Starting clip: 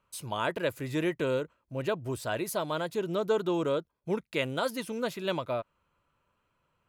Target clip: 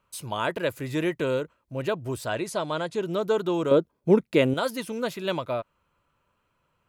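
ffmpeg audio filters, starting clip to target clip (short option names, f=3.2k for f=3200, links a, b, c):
-filter_complex "[0:a]asettb=1/sr,asplit=3[a][b][c];[a]atrim=end=2.264[d];[b]atrim=start=2.26:end=3.03,asetpts=PTS-STARTPTS,afade=t=in:d=0.004:c=qsin,afade=t=out:st=0.766:d=0.004:c=qsin,lowpass=f=9.4k:w=0.5412,lowpass=f=9.4k:w=1.3066[e];[c]atrim=start=3.026[f];[d][e]acrossfade=d=0.004:c1=hsin:c2=qsin[g];[g][f]acrossfade=d=0.004:c1=qsin:c2=hsin,asettb=1/sr,asplit=3[h][i][j];[h]atrim=end=3.714[k];[i]atrim=start=3.71:end=4.54,asetpts=PTS-STARTPTS,afade=t=in:d=0.004:c=qsin,afade=t=out:st=0.826:d=0.004:c=qsin,equalizer=f=280:t=o:w=2.8:g=10.5[l];[j]atrim=start=4.536[m];[k][l]acrossfade=d=0.004:c1=hsin:c2=qsin[n];[n][m]acrossfade=d=0.004:c1=qsin:c2=hsin,volume=3dB"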